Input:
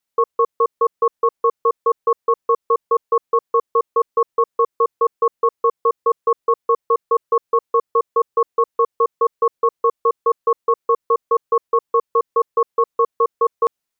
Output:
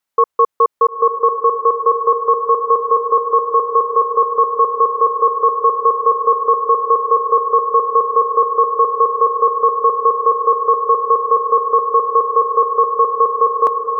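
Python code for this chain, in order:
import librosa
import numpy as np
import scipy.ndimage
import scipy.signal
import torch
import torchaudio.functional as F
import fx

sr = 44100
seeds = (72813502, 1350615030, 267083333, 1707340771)

p1 = fx.peak_eq(x, sr, hz=1100.0, db=6.0, octaves=1.8)
y = p1 + fx.echo_diffused(p1, sr, ms=954, feedback_pct=72, wet_db=-6, dry=0)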